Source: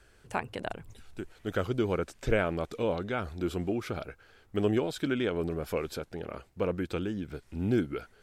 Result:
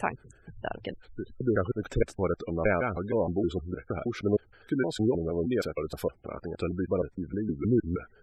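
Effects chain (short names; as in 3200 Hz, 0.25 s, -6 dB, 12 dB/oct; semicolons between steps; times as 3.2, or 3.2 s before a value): slices in reverse order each 0.156 s, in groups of 3; spectral gate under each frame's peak -20 dB strong; gain +2.5 dB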